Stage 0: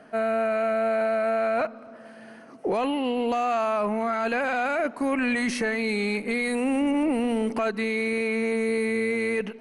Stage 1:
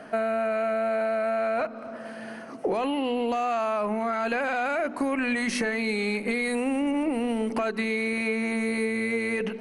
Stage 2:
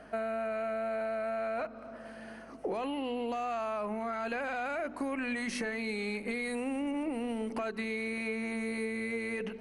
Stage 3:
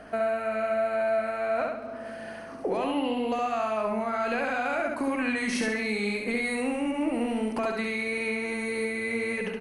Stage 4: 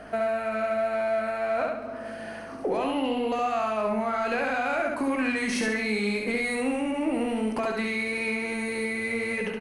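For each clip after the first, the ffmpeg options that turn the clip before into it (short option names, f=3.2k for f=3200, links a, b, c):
-af "bandreject=f=50:t=h:w=6,bandreject=f=100:t=h:w=6,bandreject=f=150:t=h:w=6,bandreject=f=200:t=h:w=6,bandreject=f=250:t=h:w=6,bandreject=f=300:t=h:w=6,bandreject=f=350:t=h:w=6,bandreject=f=400:t=h:w=6,bandreject=f=450:t=h:w=6,acompressor=threshold=-31dB:ratio=6,volume=7dB"
-af "aeval=exprs='val(0)+0.00158*(sin(2*PI*50*n/s)+sin(2*PI*2*50*n/s)/2+sin(2*PI*3*50*n/s)/3+sin(2*PI*4*50*n/s)/4+sin(2*PI*5*50*n/s)/5)':c=same,volume=-8dB"
-af "aecho=1:1:69|138|207|276|345:0.668|0.287|0.124|0.0531|0.0228,volume=5dB"
-filter_complex "[0:a]asplit=2[a][b];[b]asoftclip=type=tanh:threshold=-33.5dB,volume=-10dB[c];[a][c]amix=inputs=2:normalize=0,asplit=2[d][e];[e]adelay=19,volume=-11dB[f];[d][f]amix=inputs=2:normalize=0"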